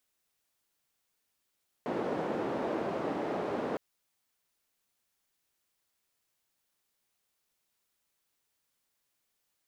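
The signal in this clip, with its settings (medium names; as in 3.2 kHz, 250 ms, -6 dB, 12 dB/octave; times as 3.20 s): noise band 270–500 Hz, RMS -33.5 dBFS 1.91 s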